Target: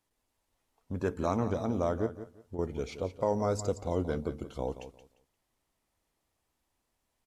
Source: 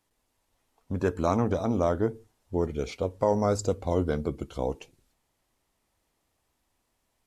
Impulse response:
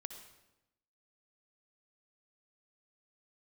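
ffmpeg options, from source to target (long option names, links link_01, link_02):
-filter_complex "[0:a]asettb=1/sr,asplit=3[link_01][link_02][link_03];[link_01]atrim=end=2.064[link_04];[link_02]atrim=start=2.06:end=2.59,asetpts=PTS-STARTPTS,afade=type=in:duration=0.004:curve=qsin,afade=type=out:start_time=0.526:duration=0.004:curve=qsin,acompressor=threshold=-33dB:ratio=6[link_05];[link_03]atrim=start=2.586[link_06];[link_04][link_05]acrossfade=duration=0.004:curve1=hsin:curve2=qsin[link_07];[link_07][link_06]acrossfade=duration=0.004:curve1=qsin:curve2=hsin,aecho=1:1:175|350|525:0.237|0.0545|0.0125,volume=-5dB"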